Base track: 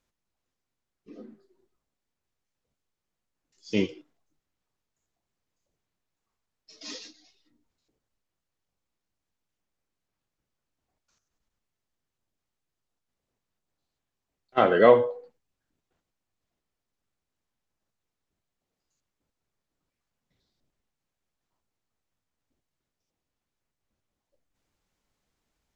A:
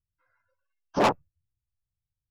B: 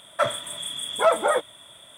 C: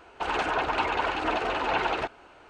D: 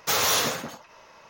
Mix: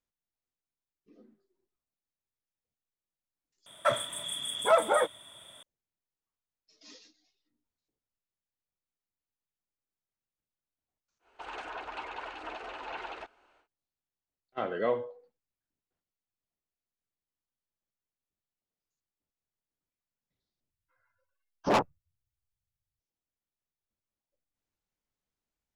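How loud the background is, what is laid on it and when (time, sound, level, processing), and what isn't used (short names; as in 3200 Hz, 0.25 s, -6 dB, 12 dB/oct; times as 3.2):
base track -13 dB
3.66 replace with B -4 dB
11.19 add C -13 dB, fades 0.10 s + bell 120 Hz -11.5 dB 2.2 oct
20.7 replace with A -3.5 dB
not used: D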